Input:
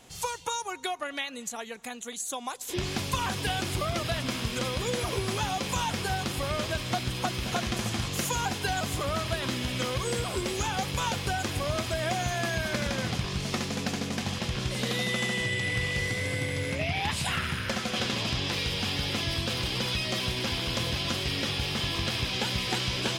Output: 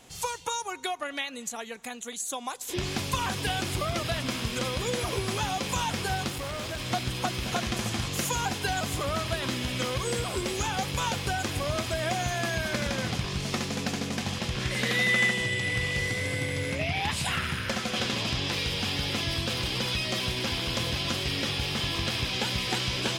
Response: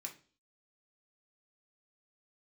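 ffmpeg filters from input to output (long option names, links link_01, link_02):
-filter_complex "[0:a]asettb=1/sr,asplit=3[link_01][link_02][link_03];[link_01]atrim=end=6.294[link_04];[link_02]atrim=start=6.29:end=6.8,asetpts=PTS-STARTPTS,afade=type=in:duration=0.004:curve=qsin,afade=type=out:start_time=0.506:duration=0.004:curve=qsin,volume=32dB,asoftclip=hard,volume=-32dB[link_05];[link_03]atrim=start=6.796[link_06];[link_04][link_05]acrossfade=duration=0.004:curve1=hsin:curve2=qsin[link_07];[link_07][link_06]acrossfade=duration=0.004:curve1=qsin:curve2=hsin,asettb=1/sr,asplit=3[link_08][link_09][link_10];[link_08]atrim=end=14.604[link_11];[link_09]atrim=start=14.6:end=15.31,asetpts=PTS-STARTPTS,afade=type=in:duration=0.004:curve=qsin,afade=type=out:start_time=0.706:duration=0.004:curve=qsin,equalizer=frequency=1900:width_type=o:width=0.68:gain=8.5[link_12];[link_10]atrim=start=15.306[link_13];[link_11][link_12]acrossfade=duration=0.004:curve1=hsin:curve2=qsin[link_14];[link_14][link_13]acrossfade=duration=0.004:curve1=qsin:curve2=hsin,asplit=2[link_15][link_16];[1:a]atrim=start_sample=2205[link_17];[link_16][link_17]afir=irnorm=-1:irlink=0,volume=-16.5dB[link_18];[link_15][link_18]amix=inputs=2:normalize=0"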